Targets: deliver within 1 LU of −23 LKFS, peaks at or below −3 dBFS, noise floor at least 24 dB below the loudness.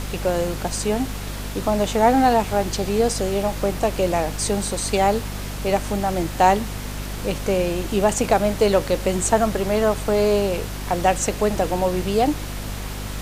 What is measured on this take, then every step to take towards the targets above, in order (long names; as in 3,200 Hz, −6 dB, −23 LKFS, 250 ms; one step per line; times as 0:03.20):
mains hum 50 Hz; hum harmonics up to 250 Hz; level of the hum −28 dBFS; background noise floor −30 dBFS; target noise floor −46 dBFS; integrated loudness −21.5 LKFS; sample peak −2.0 dBFS; target loudness −23.0 LKFS
→ mains-hum notches 50/100/150/200/250 Hz
noise reduction from a noise print 16 dB
level −1.5 dB